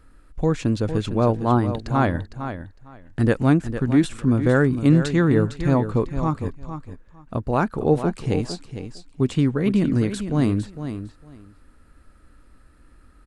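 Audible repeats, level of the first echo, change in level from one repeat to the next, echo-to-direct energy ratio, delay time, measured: 2, −10.0 dB, −15.5 dB, −10.0 dB, 456 ms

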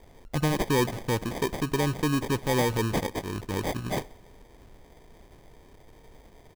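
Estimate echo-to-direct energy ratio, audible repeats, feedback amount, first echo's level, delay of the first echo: −22.0 dB, 3, 57%, −23.5 dB, 63 ms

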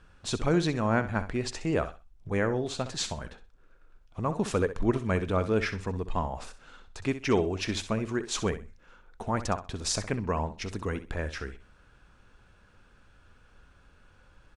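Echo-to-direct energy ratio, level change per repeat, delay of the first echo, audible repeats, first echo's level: −12.5 dB, −13.0 dB, 64 ms, 2, −12.5 dB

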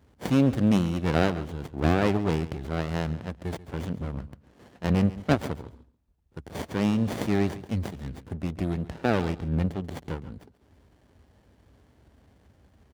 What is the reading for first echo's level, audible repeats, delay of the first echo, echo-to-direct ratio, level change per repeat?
−16.5 dB, 2, 138 ms, −16.5 dB, −15.5 dB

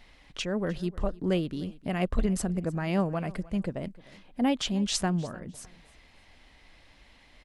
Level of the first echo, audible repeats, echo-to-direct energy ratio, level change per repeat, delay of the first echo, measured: −21.0 dB, 2, −20.5 dB, −11.5 dB, 305 ms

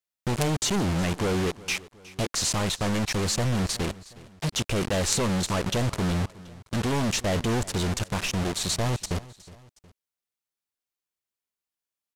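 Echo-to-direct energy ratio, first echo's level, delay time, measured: −19.0 dB, −20.0 dB, 365 ms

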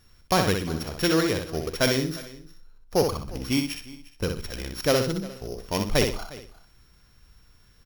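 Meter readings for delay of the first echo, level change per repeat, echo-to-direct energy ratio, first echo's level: 62 ms, repeats not evenly spaced, −5.0 dB, −5.5 dB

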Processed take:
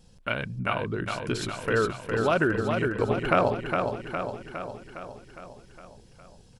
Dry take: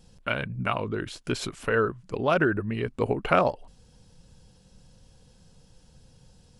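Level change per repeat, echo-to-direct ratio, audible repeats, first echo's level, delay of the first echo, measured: −4.5 dB, −3.0 dB, 7, −5.0 dB, 410 ms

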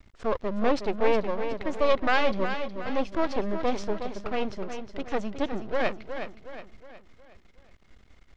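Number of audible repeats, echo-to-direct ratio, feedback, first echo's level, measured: 4, −7.5 dB, 45%, −8.5 dB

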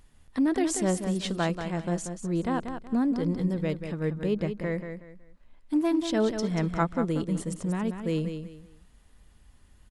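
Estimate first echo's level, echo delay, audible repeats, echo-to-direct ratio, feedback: −8.0 dB, 186 ms, 3, −7.5 dB, 28%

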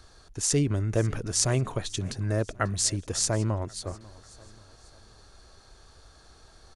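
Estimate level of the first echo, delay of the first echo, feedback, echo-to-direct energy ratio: −21.0 dB, 542 ms, 44%, −20.0 dB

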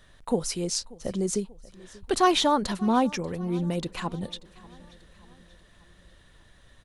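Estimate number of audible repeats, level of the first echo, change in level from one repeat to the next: 3, −22.0 dB, −5.5 dB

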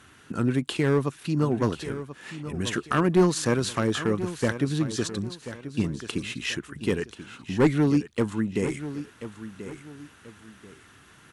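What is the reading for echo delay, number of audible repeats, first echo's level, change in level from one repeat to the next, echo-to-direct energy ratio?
1,035 ms, 2, −12.5 dB, −10.0 dB, −12.0 dB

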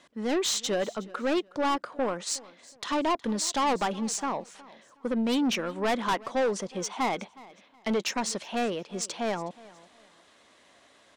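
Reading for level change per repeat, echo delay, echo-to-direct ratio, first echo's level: −11.0 dB, 366 ms, −20.5 dB, −21.0 dB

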